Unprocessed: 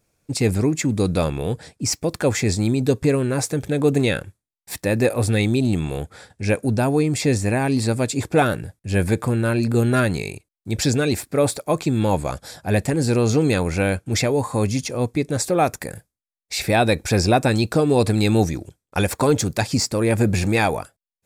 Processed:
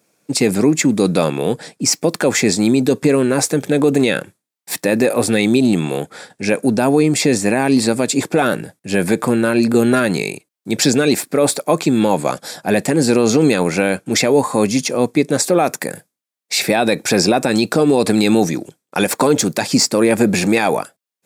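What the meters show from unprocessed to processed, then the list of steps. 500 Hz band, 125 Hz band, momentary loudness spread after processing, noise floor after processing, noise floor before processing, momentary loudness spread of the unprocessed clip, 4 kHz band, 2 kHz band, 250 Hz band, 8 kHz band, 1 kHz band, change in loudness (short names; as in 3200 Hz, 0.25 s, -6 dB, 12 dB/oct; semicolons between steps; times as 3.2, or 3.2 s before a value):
+5.5 dB, -3.0 dB, 8 LU, -82 dBFS, under -85 dBFS, 10 LU, +7.0 dB, +5.0 dB, +6.0 dB, +7.5 dB, +4.0 dB, +5.0 dB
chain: HPF 170 Hz 24 dB/oct; limiter -11.5 dBFS, peak gain reduction 8 dB; gain +8 dB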